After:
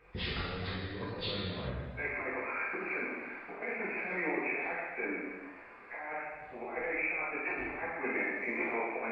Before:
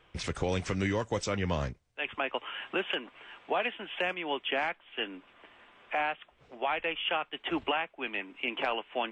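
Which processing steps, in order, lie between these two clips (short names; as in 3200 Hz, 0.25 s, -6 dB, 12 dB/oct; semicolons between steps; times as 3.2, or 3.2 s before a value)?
nonlinear frequency compression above 1500 Hz 1.5:1; negative-ratio compressor -35 dBFS, ratio -0.5; non-linear reverb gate 0.46 s falling, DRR -8 dB; gain -7.5 dB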